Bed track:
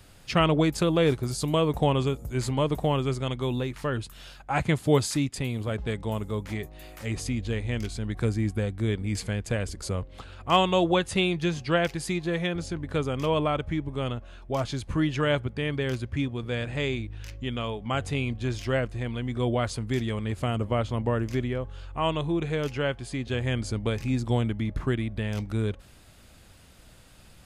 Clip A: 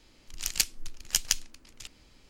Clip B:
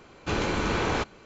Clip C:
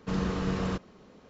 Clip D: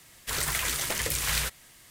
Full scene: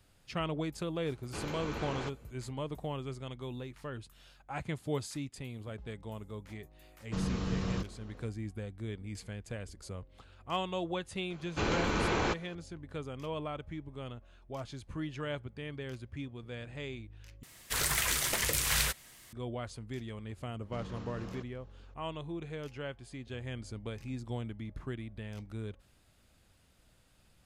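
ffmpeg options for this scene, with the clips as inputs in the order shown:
ffmpeg -i bed.wav -i cue0.wav -i cue1.wav -i cue2.wav -i cue3.wav -filter_complex "[2:a]asplit=2[link_01][link_02];[3:a]asplit=2[link_03][link_04];[0:a]volume=-13dB[link_05];[link_03]acrossover=split=190|3000[link_06][link_07][link_08];[link_07]acompressor=threshold=-37dB:ratio=6:attack=3.2:release=140:knee=2.83:detection=peak[link_09];[link_06][link_09][link_08]amix=inputs=3:normalize=0[link_10];[link_04]alimiter=level_in=1.5dB:limit=-24dB:level=0:latency=1:release=28,volume=-1.5dB[link_11];[link_05]asplit=2[link_12][link_13];[link_12]atrim=end=17.434[link_14];[4:a]atrim=end=1.9,asetpts=PTS-STARTPTS,volume=-1.5dB[link_15];[link_13]atrim=start=19.326[link_16];[link_01]atrim=end=1.25,asetpts=PTS-STARTPTS,volume=-13dB,afade=type=in:duration=0.004:curve=hsin,afade=type=out:start_time=1.246:duration=0.004:curve=hsin,adelay=1060[link_17];[link_10]atrim=end=1.29,asetpts=PTS-STARTPTS,volume=-1dB,afade=type=in:duration=0.1,afade=type=out:start_time=1.19:duration=0.1,adelay=7050[link_18];[link_02]atrim=end=1.25,asetpts=PTS-STARTPTS,volume=-4dB,afade=type=in:duration=0.004:curve=hsin,afade=type=out:start_time=1.246:duration=0.004:curve=hsin,adelay=498330S[link_19];[link_11]atrim=end=1.29,asetpts=PTS-STARTPTS,volume=-11.5dB,afade=type=in:duration=0.004:curve=hsin,afade=type=out:start_time=1.286:duration=0.004:curve=hsin,adelay=20650[link_20];[link_14][link_15]acrossfade=duration=0.004:curve1=hsin:curve2=hsin[link_21];[link_21][link_16]acrossfade=duration=0.004:curve1=hsin:curve2=hsin[link_22];[link_22][link_17][link_18][link_19][link_20]amix=inputs=5:normalize=0" out.wav

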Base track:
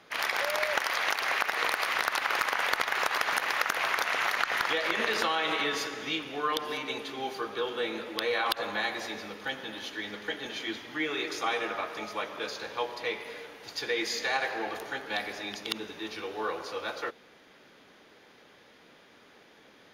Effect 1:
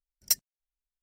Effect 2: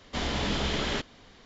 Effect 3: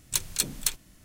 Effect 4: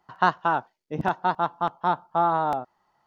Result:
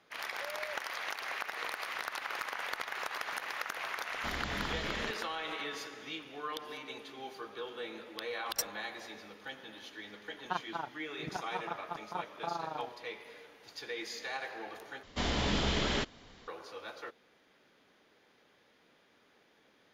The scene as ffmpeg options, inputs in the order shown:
ffmpeg -i bed.wav -i cue0.wav -i cue1.wav -i cue2.wav -i cue3.wav -filter_complex "[2:a]asplit=2[link_01][link_02];[0:a]volume=-10dB[link_03];[1:a]highshelf=frequency=4900:gain=-8.5[link_04];[4:a]tremolo=f=25:d=0.824[link_05];[link_03]asplit=2[link_06][link_07];[link_06]atrim=end=15.034[link_08];[link_02]atrim=end=1.45,asetpts=PTS-STARTPTS,volume=-2dB[link_09];[link_07]atrim=start=16.476[link_10];[link_01]atrim=end=1.45,asetpts=PTS-STARTPTS,volume=-10dB,afade=type=in:duration=0.004:curve=hsin,afade=type=out:start_time=1.446:duration=0.004:curve=hsin,adelay=4100[link_11];[link_04]atrim=end=1.02,asetpts=PTS-STARTPTS,volume=-3.5dB,afade=type=in:duration=0.004:curve=hsin,afade=type=out:start_time=1.016:duration=0.004:curve=hsin,adelay=8280[link_12];[link_05]atrim=end=3.06,asetpts=PTS-STARTPTS,volume=-12.5dB,afade=type=in:duration=0.004:curve=hsin,afade=type=out:start_time=3.056:duration=0.004:curve=hsin,adelay=10280[link_13];[link_08][link_09]acrossfade=duration=0.004:curve1=hsin:curve2=hsin[link_14];[link_14][link_10]acrossfade=duration=0.004:curve1=hsin:curve2=hsin[link_15];[link_15][link_11][link_12][link_13]amix=inputs=4:normalize=0" out.wav

